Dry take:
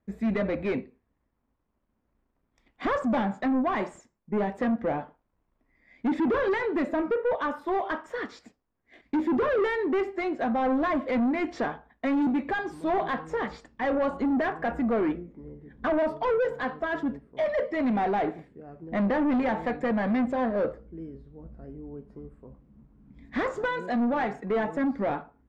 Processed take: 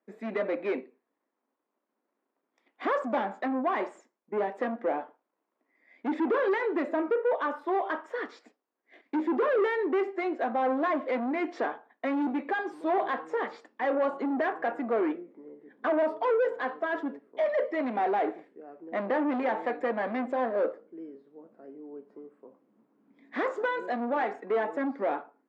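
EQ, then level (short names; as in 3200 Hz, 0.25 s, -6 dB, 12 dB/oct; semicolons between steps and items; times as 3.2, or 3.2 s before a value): HPF 300 Hz 24 dB/oct; high shelf 4500 Hz -10.5 dB; 0.0 dB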